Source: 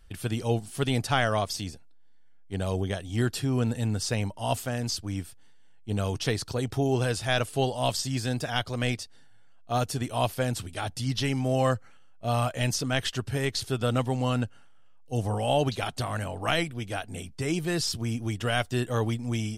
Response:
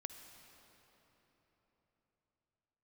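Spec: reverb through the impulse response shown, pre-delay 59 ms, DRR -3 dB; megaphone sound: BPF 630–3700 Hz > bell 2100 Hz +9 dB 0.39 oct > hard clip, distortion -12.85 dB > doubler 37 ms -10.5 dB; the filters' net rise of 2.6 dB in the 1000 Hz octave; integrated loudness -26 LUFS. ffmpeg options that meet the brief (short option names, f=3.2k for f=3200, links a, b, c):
-filter_complex "[0:a]equalizer=f=1k:t=o:g=5,asplit=2[a][b];[1:a]atrim=start_sample=2205,adelay=59[c];[b][c]afir=irnorm=-1:irlink=0,volume=6.5dB[d];[a][d]amix=inputs=2:normalize=0,highpass=630,lowpass=3.7k,equalizer=f=2.1k:t=o:w=0.39:g=9,asoftclip=type=hard:threshold=-17dB,asplit=2[e][f];[f]adelay=37,volume=-10.5dB[g];[e][g]amix=inputs=2:normalize=0,volume=0.5dB"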